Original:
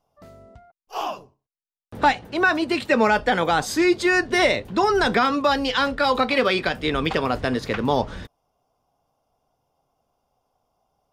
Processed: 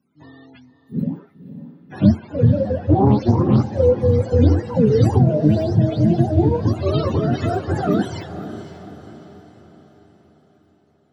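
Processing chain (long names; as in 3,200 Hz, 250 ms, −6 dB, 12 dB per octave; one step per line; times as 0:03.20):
frequency axis turned over on the octave scale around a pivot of 420 Hz
feedback delay with all-pass diffusion 526 ms, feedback 48%, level −12 dB
0:02.77–0:03.80: highs frequency-modulated by the lows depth 0.33 ms
level +4.5 dB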